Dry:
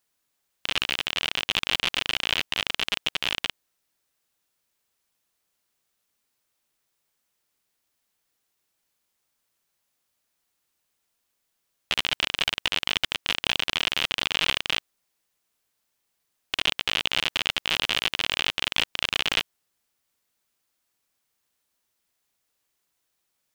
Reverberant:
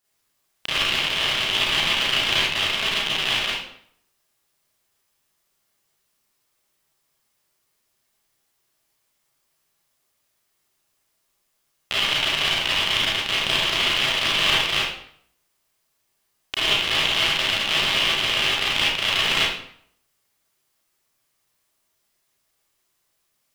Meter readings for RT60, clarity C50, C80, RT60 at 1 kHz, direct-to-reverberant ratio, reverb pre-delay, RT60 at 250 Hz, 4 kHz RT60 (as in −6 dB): 0.60 s, −1.0 dB, 4.0 dB, 0.65 s, −7.5 dB, 29 ms, 0.65 s, 0.50 s